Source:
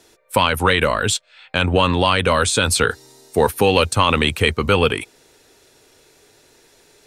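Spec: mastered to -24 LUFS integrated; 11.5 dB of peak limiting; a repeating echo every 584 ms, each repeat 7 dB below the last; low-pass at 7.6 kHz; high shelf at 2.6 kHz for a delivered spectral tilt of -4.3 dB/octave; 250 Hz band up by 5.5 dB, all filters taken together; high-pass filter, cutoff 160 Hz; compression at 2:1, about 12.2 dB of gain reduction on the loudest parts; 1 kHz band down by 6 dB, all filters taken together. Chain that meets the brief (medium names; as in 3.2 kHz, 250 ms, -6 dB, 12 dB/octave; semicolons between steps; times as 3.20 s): high-pass 160 Hz; low-pass 7.6 kHz; peaking EQ 250 Hz +8.5 dB; peaking EQ 1 kHz -6.5 dB; treble shelf 2.6 kHz -7.5 dB; compression 2:1, threshold -33 dBFS; peak limiter -24.5 dBFS; feedback delay 584 ms, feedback 45%, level -7 dB; trim +11 dB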